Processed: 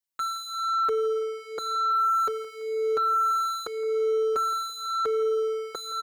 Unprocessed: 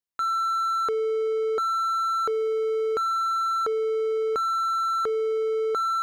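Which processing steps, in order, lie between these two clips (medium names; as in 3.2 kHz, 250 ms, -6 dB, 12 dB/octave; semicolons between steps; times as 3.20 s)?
treble shelf 2.8 kHz +7.5 dB; on a send: feedback delay 168 ms, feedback 44%, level -18 dB; on the sum: endless flanger 4.8 ms -0.93 Hz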